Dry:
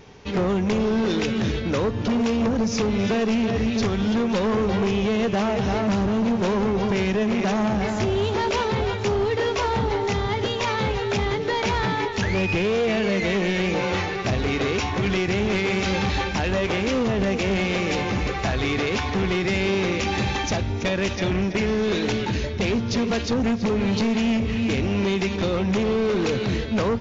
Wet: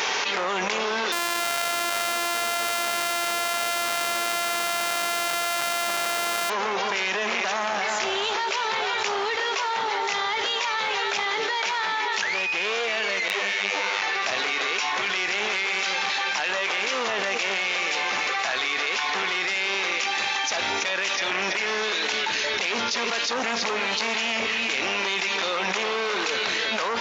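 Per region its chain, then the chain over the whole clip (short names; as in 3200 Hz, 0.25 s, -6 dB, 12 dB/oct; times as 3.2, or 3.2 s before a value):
1.12–6.5 sample sorter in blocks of 128 samples + echo 0.28 s -5 dB
13.28–14.02 robotiser 100 Hz + detuned doubles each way 46 cents
whole clip: HPF 1000 Hz 12 dB/oct; fast leveller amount 100%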